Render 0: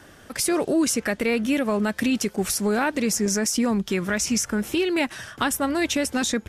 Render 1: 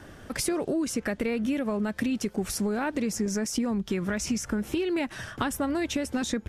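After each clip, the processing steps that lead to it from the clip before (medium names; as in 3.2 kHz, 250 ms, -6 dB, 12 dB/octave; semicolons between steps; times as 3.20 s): tilt EQ -1.5 dB/octave; compression, threshold -25 dBFS, peak gain reduction 10 dB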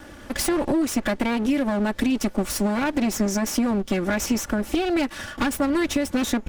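comb filter that takes the minimum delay 3.5 ms; trim +6 dB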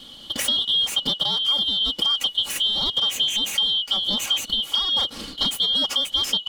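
four frequency bands reordered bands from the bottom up 2413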